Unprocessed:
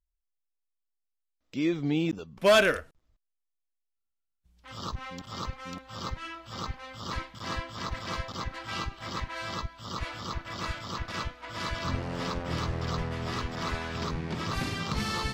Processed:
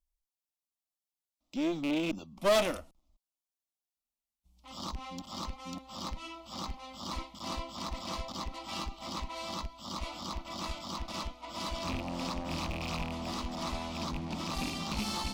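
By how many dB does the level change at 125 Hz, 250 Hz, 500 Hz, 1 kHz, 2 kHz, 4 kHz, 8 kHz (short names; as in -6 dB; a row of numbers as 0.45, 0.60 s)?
-7.5, -3.0, -5.0, -3.5, -9.5, -2.5, -0.5 dB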